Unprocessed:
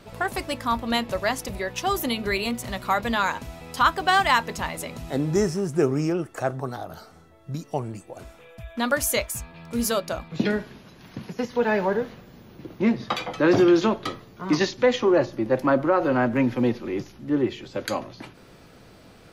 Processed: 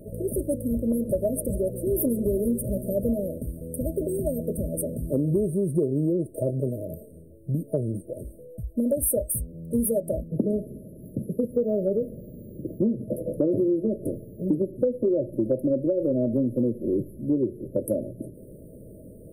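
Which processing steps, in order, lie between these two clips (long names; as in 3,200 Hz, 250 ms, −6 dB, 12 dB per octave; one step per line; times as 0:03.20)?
brick-wall band-stop 650–8,400 Hz
downward compressor 10 to 1, threshold −26 dBFS, peak gain reduction 13 dB
0:00.77–0:03.23: feedback echo with a swinging delay time 140 ms, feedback 63%, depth 157 cents, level −15.5 dB
level +6 dB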